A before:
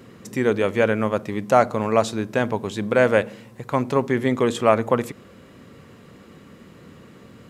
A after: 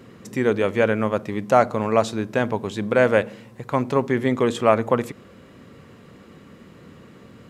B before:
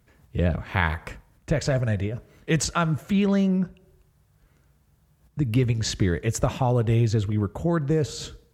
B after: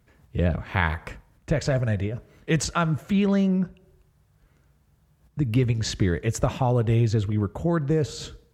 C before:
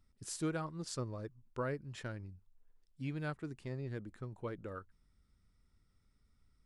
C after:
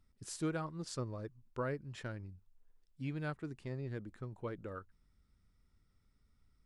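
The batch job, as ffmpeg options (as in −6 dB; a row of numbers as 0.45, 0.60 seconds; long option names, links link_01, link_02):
-af "highshelf=frequency=6100:gain=-4"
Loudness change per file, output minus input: 0.0, 0.0, 0.0 LU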